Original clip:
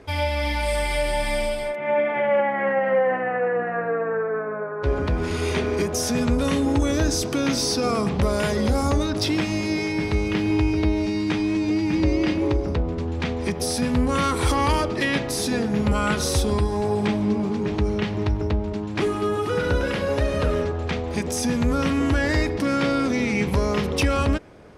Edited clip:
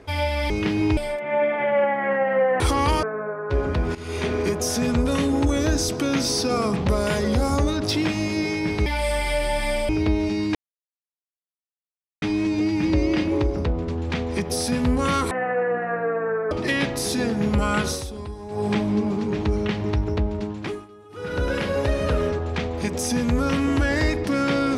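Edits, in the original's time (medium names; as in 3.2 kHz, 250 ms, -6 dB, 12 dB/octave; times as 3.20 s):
0.50–1.53 s: swap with 10.19–10.66 s
3.16–4.36 s: swap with 14.41–14.84 s
5.28–5.65 s: fade in, from -14.5 dB
11.32 s: insert silence 1.67 s
16.19–17.00 s: dip -12 dB, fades 0.18 s
18.77–19.86 s: dip -23 dB, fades 0.44 s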